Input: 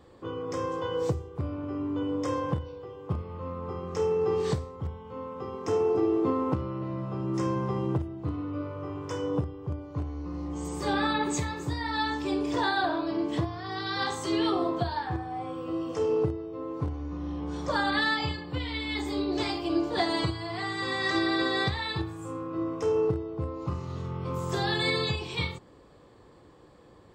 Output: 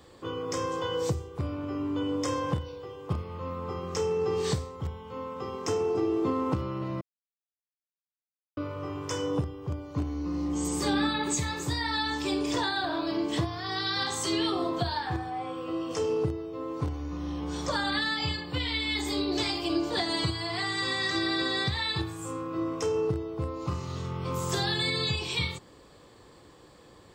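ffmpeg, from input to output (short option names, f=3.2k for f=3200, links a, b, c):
-filter_complex "[0:a]asettb=1/sr,asplit=3[a][b][c];[a]atrim=end=9.964[d];[b]atrim=start=9.96:end=11.09,asetpts=PTS-STARTPTS,afade=t=in:d=0.004:c=qsin,afade=t=out:st=1.126:d=0.004:c=qsin,equalizer=f=260:t=o:w=0.77:g=7[e];[c]atrim=start=11.086[f];[d][e]acrossfade=d=0.004:c1=hsin:c2=qsin[g];[g][f]acrossfade=d=0.004:c1=qsin:c2=hsin,asettb=1/sr,asplit=3[h][i][j];[h]atrim=end=15.304[k];[i]atrim=start=15.3:end=15.91,asetpts=PTS-STARTPTS,afade=t=in:d=0.004:c=qsin,afade=t=out:st=0.606:d=0.004:c=qsin,bass=f=250:g=-4,treble=f=4k:g=-7[l];[j]atrim=start=15.906[m];[k][l]acrossfade=d=0.004:c1=hsin:c2=qsin[n];[n][m]acrossfade=d=0.004:c1=qsin:c2=hsin,asplit=3[o][p][q];[o]atrim=end=7.01,asetpts=PTS-STARTPTS,afade=t=out:st=7.006:d=0.004:c=hsin[r];[p]atrim=start=7.01:end=8.57,asetpts=PTS-STARTPTS,volume=0[s];[q]atrim=start=8.57,asetpts=PTS-STARTPTS,afade=t=in:d=0.004:c=hsin[t];[r][s][t]concat=n=3:v=0:a=1,highshelf=f=2.3k:g=11,acrossover=split=280[u][v];[v]acompressor=threshold=-27dB:ratio=6[w];[u][w]amix=inputs=2:normalize=0"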